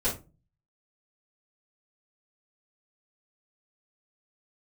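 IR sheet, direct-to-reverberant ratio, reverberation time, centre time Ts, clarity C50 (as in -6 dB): -12.5 dB, 0.30 s, 24 ms, 9.0 dB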